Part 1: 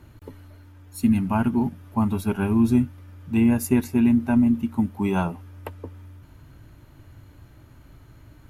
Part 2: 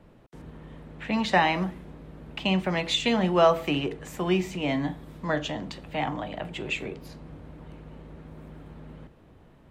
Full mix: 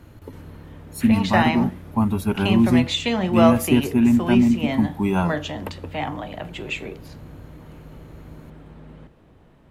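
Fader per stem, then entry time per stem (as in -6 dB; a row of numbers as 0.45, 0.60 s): +2.0, +1.5 dB; 0.00, 0.00 s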